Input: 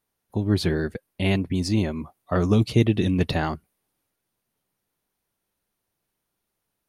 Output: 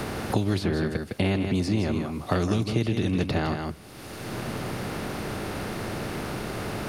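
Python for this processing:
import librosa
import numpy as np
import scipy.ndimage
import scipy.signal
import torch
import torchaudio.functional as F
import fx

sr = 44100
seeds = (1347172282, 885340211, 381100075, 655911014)

y = fx.bin_compress(x, sr, power=0.6)
y = y + 10.0 ** (-8.5 / 20.0) * np.pad(y, (int(159 * sr / 1000.0), 0))[:len(y)]
y = fx.band_squash(y, sr, depth_pct=100)
y = y * 10.0 ** (-5.5 / 20.0)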